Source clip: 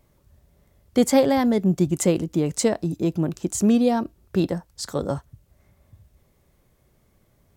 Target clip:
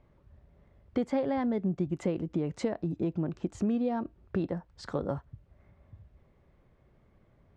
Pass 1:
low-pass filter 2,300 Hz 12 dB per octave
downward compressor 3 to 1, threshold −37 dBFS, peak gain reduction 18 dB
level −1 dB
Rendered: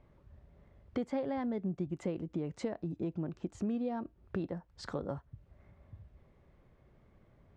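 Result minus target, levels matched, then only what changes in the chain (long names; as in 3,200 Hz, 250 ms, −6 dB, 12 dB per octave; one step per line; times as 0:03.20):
downward compressor: peak gain reduction +5.5 dB
change: downward compressor 3 to 1, threshold −28.5 dBFS, peak gain reduction 12 dB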